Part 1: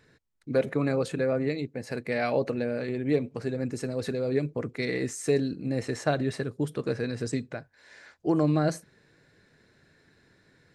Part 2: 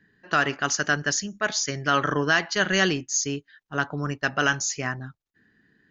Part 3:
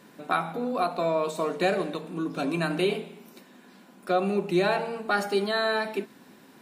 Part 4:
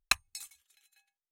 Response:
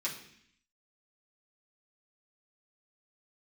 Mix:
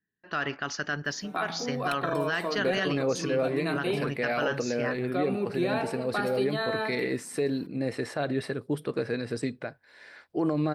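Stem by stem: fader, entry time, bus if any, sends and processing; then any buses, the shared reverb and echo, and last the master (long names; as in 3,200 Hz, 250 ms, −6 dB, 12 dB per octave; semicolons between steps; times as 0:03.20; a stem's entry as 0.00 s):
+2.0 dB, 2.10 s, no send, low-shelf EQ 150 Hz −10 dB
−4.0 dB, 0.00 s, no send, noise gate with hold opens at −51 dBFS
−4.0 dB, 1.05 s, no send, no processing
−5.5 dB, 1.80 s, no send, no processing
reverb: not used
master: parametric band 6,700 Hz −14.5 dB 0.39 octaves; brickwall limiter −18 dBFS, peak gain reduction 9 dB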